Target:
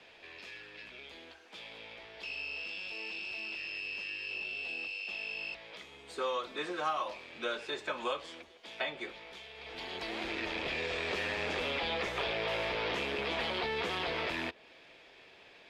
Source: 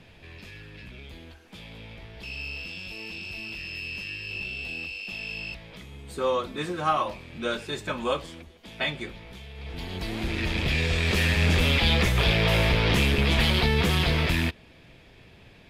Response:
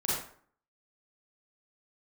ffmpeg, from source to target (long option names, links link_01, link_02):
-filter_complex "[0:a]acrossover=split=350 7200:gain=0.0708 1 0.0891[link_01][link_02][link_03];[link_01][link_02][link_03]amix=inputs=3:normalize=0,acrossover=split=200|1200|3800[link_04][link_05][link_06][link_07];[link_04]acompressor=threshold=-47dB:ratio=4[link_08];[link_05]acompressor=threshold=-34dB:ratio=4[link_09];[link_06]acompressor=threshold=-38dB:ratio=4[link_10];[link_07]acompressor=threshold=-51dB:ratio=4[link_11];[link_08][link_09][link_10][link_11]amix=inputs=4:normalize=0,highshelf=frequency=11000:gain=8,volume=-1dB"